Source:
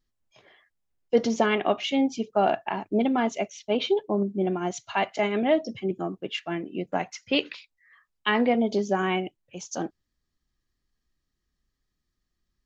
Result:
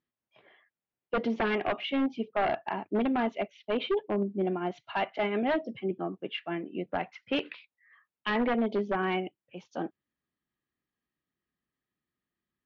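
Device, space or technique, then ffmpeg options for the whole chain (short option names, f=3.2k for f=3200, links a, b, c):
synthesiser wavefolder: -af "highpass=150,aeval=exprs='0.126*(abs(mod(val(0)/0.126+3,4)-2)-1)':c=same,lowpass=f=3.2k:w=0.5412,lowpass=f=3.2k:w=1.3066,volume=-3dB"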